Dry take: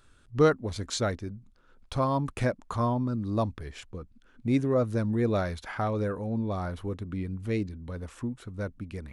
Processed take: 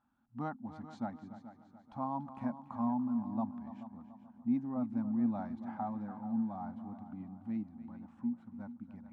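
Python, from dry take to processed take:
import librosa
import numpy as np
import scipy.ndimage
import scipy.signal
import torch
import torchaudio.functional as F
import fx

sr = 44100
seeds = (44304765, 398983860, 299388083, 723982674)

y = fx.double_bandpass(x, sr, hz=440.0, octaves=1.8)
y = fx.echo_heads(y, sr, ms=144, heads='second and third', feedback_pct=45, wet_db=-14.0)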